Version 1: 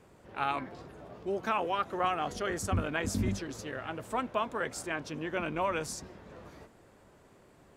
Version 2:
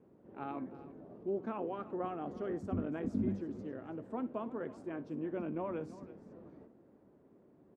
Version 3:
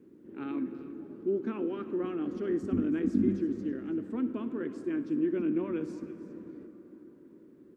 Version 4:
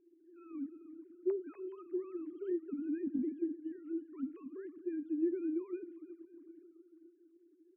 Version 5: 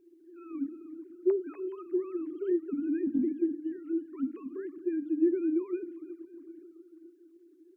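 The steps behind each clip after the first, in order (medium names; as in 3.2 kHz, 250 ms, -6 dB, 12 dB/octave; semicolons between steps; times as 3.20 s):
band-pass filter 270 Hz, Q 1.4; multi-tap echo 61/330 ms -18.5/-16 dB; trim +1 dB
FFT filter 140 Hz 0 dB, 320 Hz +12 dB, 700 Hz -11 dB, 1.6 kHz +5 dB, 3.5 kHz +7 dB; on a send at -12.5 dB: reverberation RT60 5.0 s, pre-delay 63 ms
formants replaced by sine waves; trim -7.5 dB
hum notches 60/120/180/240/300 Hz; trim +7.5 dB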